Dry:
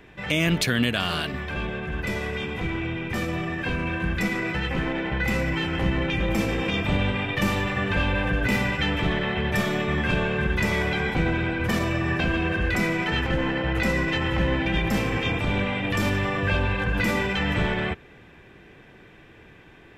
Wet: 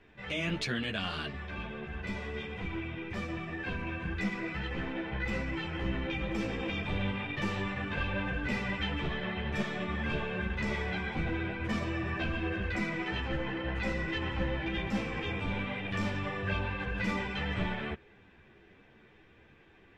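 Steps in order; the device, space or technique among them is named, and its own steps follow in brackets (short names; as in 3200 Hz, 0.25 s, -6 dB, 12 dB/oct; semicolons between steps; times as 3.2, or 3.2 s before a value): string-machine ensemble chorus (ensemble effect; LPF 5900 Hz 12 dB/oct); gain -6.5 dB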